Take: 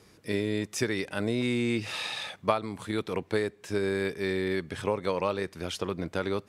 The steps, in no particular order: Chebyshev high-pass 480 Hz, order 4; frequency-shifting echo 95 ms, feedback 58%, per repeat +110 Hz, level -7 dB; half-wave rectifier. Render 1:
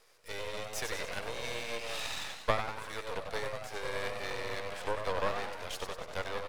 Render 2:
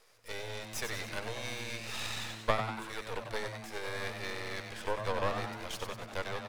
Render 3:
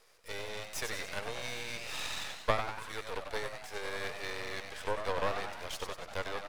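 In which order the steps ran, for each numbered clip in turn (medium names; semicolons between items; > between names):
frequency-shifting echo > Chebyshev high-pass > half-wave rectifier; Chebyshev high-pass > half-wave rectifier > frequency-shifting echo; Chebyshev high-pass > frequency-shifting echo > half-wave rectifier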